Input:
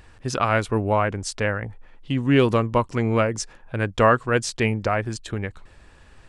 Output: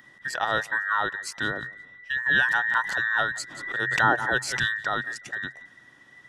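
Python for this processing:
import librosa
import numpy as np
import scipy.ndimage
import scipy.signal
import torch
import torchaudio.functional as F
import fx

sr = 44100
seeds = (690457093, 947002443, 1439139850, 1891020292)

y = fx.band_invert(x, sr, width_hz=2000)
y = scipy.signal.sosfilt(scipy.signal.butter(2, 44.0, 'highpass', fs=sr, output='sos'), y)
y = fx.peak_eq(y, sr, hz=130.0, db=11.5, octaves=0.27)
y = fx.echo_feedback(y, sr, ms=175, feedback_pct=39, wet_db=-23.5)
y = fx.pre_swell(y, sr, db_per_s=54.0, at=(2.26, 4.68))
y = y * 10.0 ** (-5.0 / 20.0)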